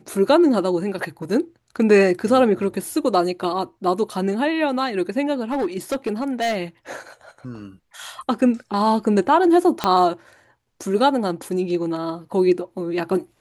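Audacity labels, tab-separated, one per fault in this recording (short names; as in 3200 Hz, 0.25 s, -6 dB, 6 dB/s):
5.510000	6.570000	clipped -18 dBFS
9.840000	9.840000	pop -5 dBFS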